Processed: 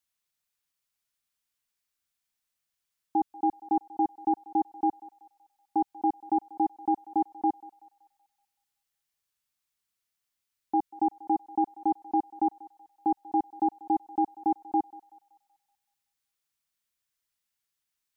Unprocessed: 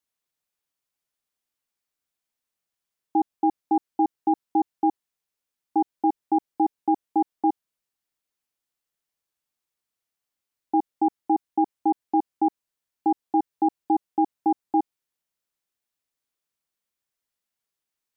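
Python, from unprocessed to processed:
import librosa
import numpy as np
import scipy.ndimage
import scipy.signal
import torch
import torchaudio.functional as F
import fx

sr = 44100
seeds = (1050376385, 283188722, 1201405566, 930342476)

p1 = fx.peak_eq(x, sr, hz=420.0, db=-8.5, octaves=2.3)
p2 = p1 + fx.echo_thinned(p1, sr, ms=189, feedback_pct=60, hz=880.0, wet_db=-16, dry=0)
y = F.gain(torch.from_numpy(p2), 2.0).numpy()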